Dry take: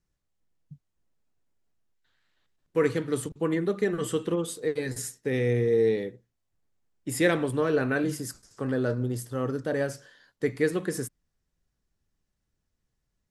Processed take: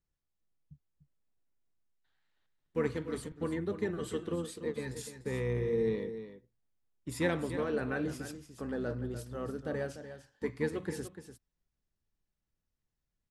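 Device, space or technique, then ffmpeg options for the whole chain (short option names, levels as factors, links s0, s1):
octave pedal: -filter_complex "[0:a]asplit=2[s0][s1];[s1]asetrate=22050,aresample=44100,atempo=2,volume=0.355[s2];[s0][s2]amix=inputs=2:normalize=0,highshelf=f=9700:g=-7.5,aecho=1:1:295:0.282,volume=0.376"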